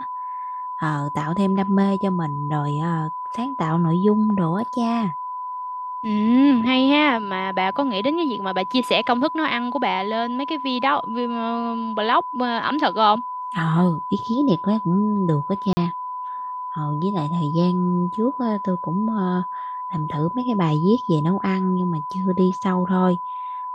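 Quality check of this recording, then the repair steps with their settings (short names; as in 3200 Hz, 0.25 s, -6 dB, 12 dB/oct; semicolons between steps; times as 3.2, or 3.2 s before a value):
tone 1000 Hz -27 dBFS
15.73–15.77 gap 40 ms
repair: notch 1000 Hz, Q 30; interpolate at 15.73, 40 ms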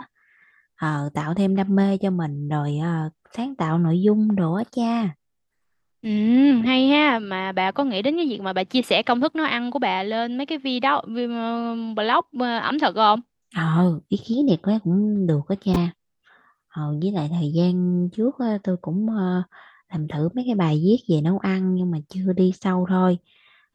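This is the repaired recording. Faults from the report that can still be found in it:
none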